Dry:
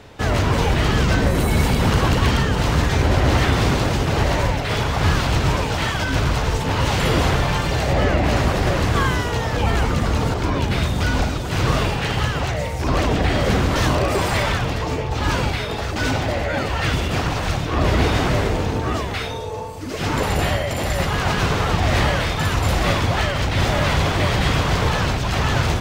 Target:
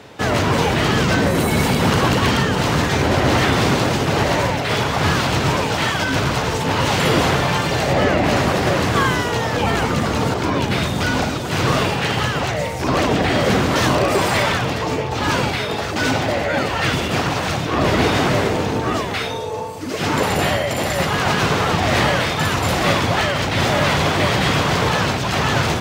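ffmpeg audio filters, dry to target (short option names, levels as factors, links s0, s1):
-af "highpass=130,volume=1.5"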